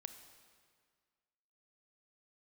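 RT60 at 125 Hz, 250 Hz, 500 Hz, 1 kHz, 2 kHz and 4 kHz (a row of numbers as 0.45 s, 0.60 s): 1.8 s, 1.9 s, 1.8 s, 1.9 s, 1.8 s, 1.6 s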